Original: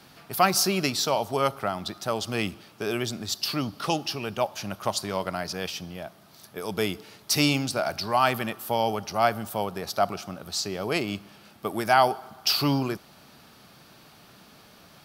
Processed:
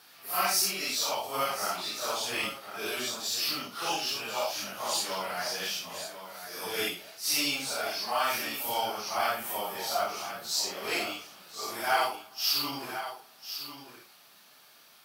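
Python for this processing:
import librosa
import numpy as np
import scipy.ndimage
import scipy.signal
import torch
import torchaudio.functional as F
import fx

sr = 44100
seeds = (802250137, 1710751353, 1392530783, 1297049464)

p1 = fx.phase_scramble(x, sr, seeds[0], window_ms=200)
p2 = fx.highpass(p1, sr, hz=1200.0, slope=6)
p3 = fx.high_shelf(p2, sr, hz=12000.0, db=7.5)
p4 = fx.rider(p3, sr, range_db=4, speed_s=0.5)
p5 = p3 + F.gain(torch.from_numpy(p4), 3.0).numpy()
p6 = fx.quant_companded(p5, sr, bits=6)
p7 = p6 + fx.echo_single(p6, sr, ms=1048, db=-10.5, dry=0)
p8 = fx.end_taper(p7, sr, db_per_s=130.0)
y = F.gain(torch.from_numpy(p8), -8.5).numpy()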